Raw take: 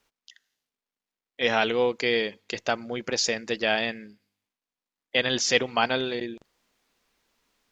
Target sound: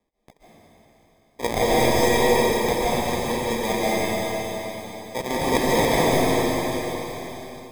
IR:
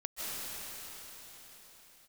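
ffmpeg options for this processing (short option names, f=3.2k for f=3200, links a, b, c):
-filter_complex "[0:a]asettb=1/sr,asplit=3[a][b][c];[a]atrim=end=3.144[d];[b]atrim=start=3.14:end=5.2,asetpts=PTS-STARTPTS,afade=t=in:d=0.004:c=qsin,afade=t=out:st=2.056:d=0.004:c=qsin,lowpass=f=1.9k:w=0.5412,lowpass=f=1.9k:w=1.3066[e];[c]atrim=start=5.196[f];[d][e]acrossfade=d=0.004:c1=hsin:c2=qsin[g];[g][f]acrossfade=d=0.004:c1=qsin:c2=hsin,acrusher=samples=31:mix=1:aa=0.000001[h];[1:a]atrim=start_sample=2205,asetrate=48510,aresample=44100[i];[h][i]afir=irnorm=-1:irlink=0,volume=2.5dB"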